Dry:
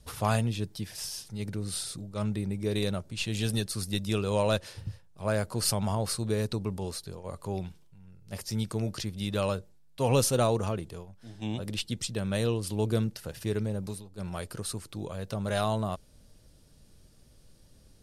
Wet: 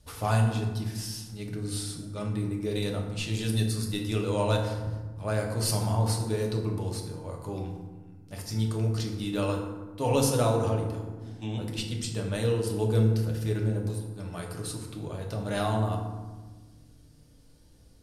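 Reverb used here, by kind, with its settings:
feedback delay network reverb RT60 1.3 s, low-frequency decay 1.55×, high-frequency decay 0.5×, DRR 0 dB
level −3 dB

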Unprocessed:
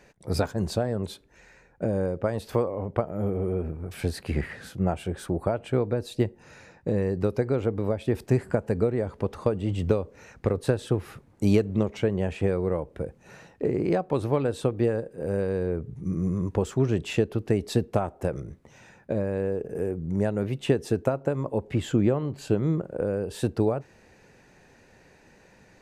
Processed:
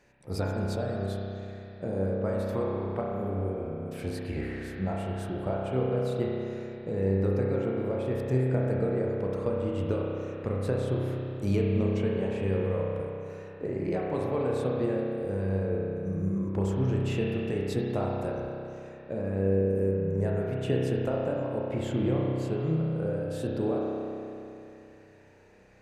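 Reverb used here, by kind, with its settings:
spring reverb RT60 2.9 s, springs 31 ms, chirp 75 ms, DRR −3.5 dB
level −8 dB

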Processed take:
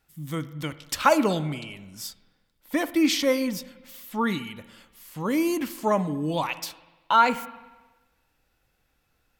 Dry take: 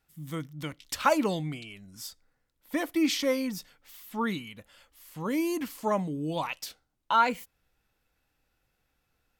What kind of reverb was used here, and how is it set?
spring reverb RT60 1.2 s, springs 47/60 ms, chirp 75 ms, DRR 14.5 dB
level +4.5 dB

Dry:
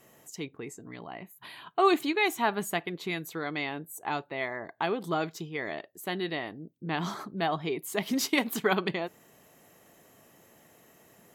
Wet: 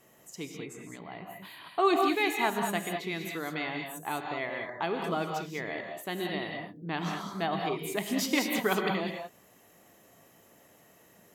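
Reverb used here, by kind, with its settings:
reverb whose tail is shaped and stops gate 230 ms rising, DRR 2.5 dB
level −2.5 dB

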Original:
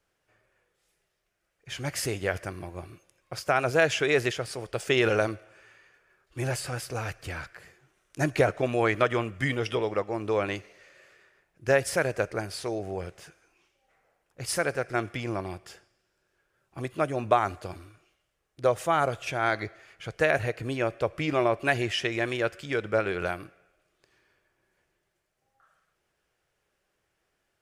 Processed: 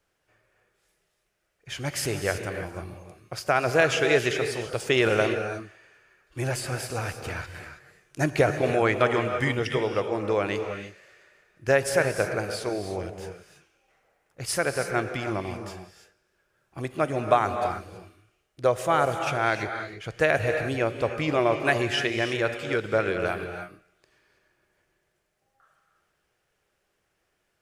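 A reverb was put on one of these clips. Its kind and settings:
reverb whose tail is shaped and stops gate 350 ms rising, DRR 6.5 dB
level +1.5 dB

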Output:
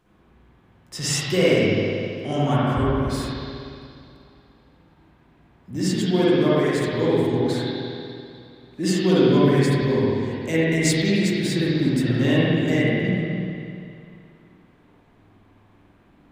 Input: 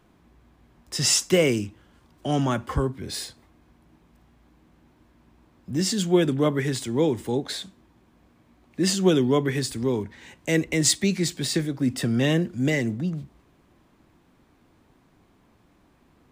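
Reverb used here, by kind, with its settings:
spring reverb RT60 2.5 s, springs 49/59 ms, chirp 40 ms, DRR −9 dB
level −5 dB

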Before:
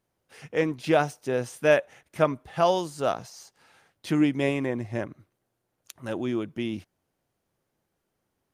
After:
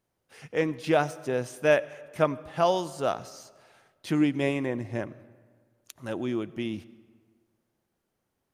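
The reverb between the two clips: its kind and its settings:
comb and all-pass reverb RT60 1.7 s, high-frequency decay 0.6×, pre-delay 50 ms, DRR 19 dB
level −1.5 dB

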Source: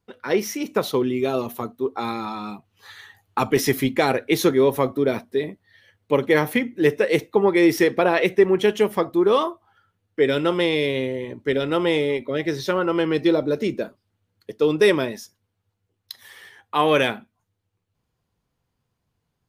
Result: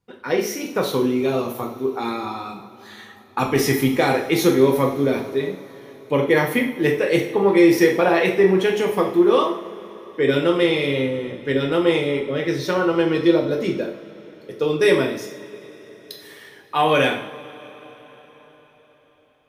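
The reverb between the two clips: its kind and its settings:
coupled-rooms reverb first 0.53 s, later 4.9 s, from −21 dB, DRR 0 dB
level −1.5 dB

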